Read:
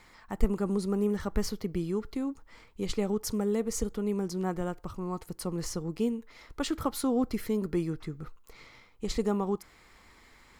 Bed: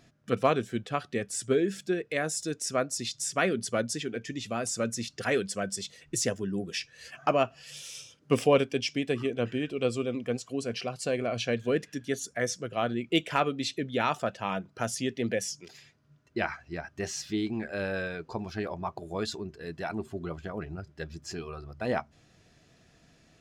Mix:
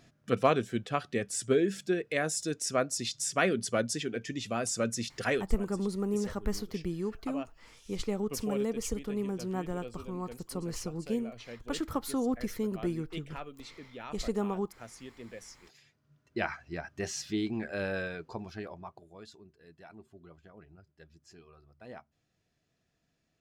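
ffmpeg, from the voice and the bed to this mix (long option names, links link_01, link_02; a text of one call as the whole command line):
ffmpeg -i stem1.wav -i stem2.wav -filter_complex "[0:a]adelay=5100,volume=-3dB[link_01];[1:a]volume=14.5dB,afade=type=out:start_time=5.28:duration=0.21:silence=0.158489,afade=type=in:start_time=15.44:duration=1.07:silence=0.177828,afade=type=out:start_time=17.92:duration=1.2:silence=0.158489[link_02];[link_01][link_02]amix=inputs=2:normalize=0" out.wav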